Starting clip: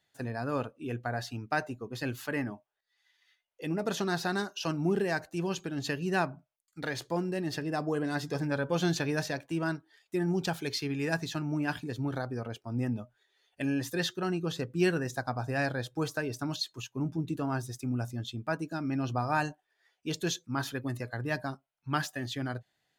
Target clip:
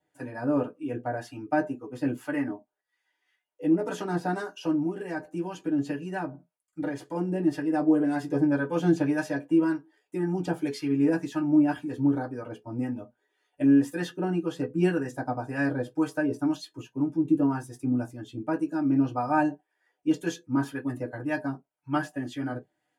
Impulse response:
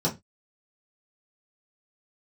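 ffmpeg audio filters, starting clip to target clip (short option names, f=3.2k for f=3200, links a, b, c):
-filter_complex "[0:a]asettb=1/sr,asplit=3[a][b][c];[a]atrim=end=4.614[d];[b]atrim=start=4.61:end=7.15,asetpts=PTS-STARTPTS,afade=t=in:d=0.004:c=qsin,afade=t=out:st=2.536:d=0.004:c=qsin,acompressor=threshold=-33dB:ratio=2.5[e];[c]atrim=start=7.146[f];[d][e]acrossfade=d=0.004:c1=hsin:c2=qsin[g];[g][f]acrossfade=d=0.004:c1=qsin:c2=hsin,acrossover=split=840[h][i];[h]aeval=exprs='val(0)*(1-0.5/2+0.5/2*cos(2*PI*1.9*n/s))':c=same[j];[i]aeval=exprs='val(0)*(1-0.5/2-0.5/2*cos(2*PI*1.9*n/s))':c=same[k];[j][k]amix=inputs=2:normalize=0[l];[1:a]atrim=start_sample=2205,asetrate=83790,aresample=44100[m];[l][m]afir=irnorm=-1:irlink=0,volume=-5.5dB"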